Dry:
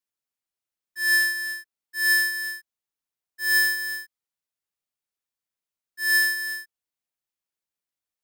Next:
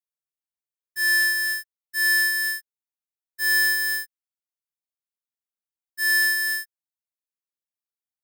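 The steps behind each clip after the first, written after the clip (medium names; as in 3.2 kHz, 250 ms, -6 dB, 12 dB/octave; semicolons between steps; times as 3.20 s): treble shelf 7.8 kHz +7 dB; waveshaping leveller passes 3; trim -6.5 dB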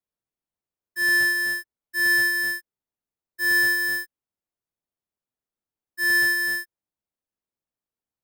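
tilt shelf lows +8 dB, about 1.2 kHz; trim +3.5 dB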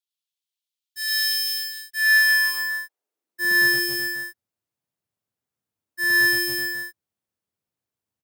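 high-pass sweep 3.4 kHz -> 99 Hz, 1.82–3.81 s; loudspeakers at several distances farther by 36 m 0 dB, 93 m -5 dB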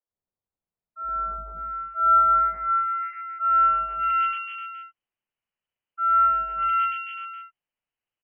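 tilt shelf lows -4 dB, about 690 Hz; frequency inversion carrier 3.1 kHz; three bands offset in time mids, lows, highs 70/590 ms, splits 300/1700 Hz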